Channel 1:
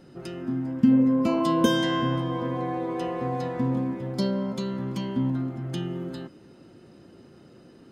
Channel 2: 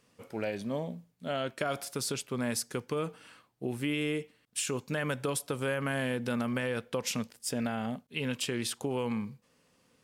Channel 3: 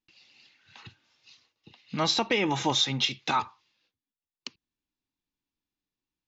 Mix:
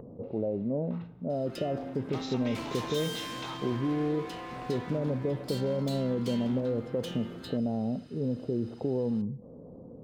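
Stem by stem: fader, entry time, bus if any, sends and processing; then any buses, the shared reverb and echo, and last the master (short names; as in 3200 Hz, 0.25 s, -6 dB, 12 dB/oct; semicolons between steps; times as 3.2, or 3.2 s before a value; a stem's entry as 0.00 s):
-1.0 dB, 1.30 s, no send, graphic EQ 125/250/500/4000 Hz -11/-5/-11/+7 dB; hard clip -37 dBFS, distortion -4 dB
+2.0 dB, 0.00 s, no send, inverse Chebyshev low-pass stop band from 2100 Hz, stop band 60 dB; fast leveller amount 50%
-2.5 dB, 0.15 s, no send, per-bin compression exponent 0.6; low-pass opened by the level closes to 500 Hz, open at -22.5 dBFS; compressor 2.5:1, threshold -31 dBFS, peak gain reduction 8.5 dB; auto duck -9 dB, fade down 0.70 s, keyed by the second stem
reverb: off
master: upward compressor, threshold -43 dBFS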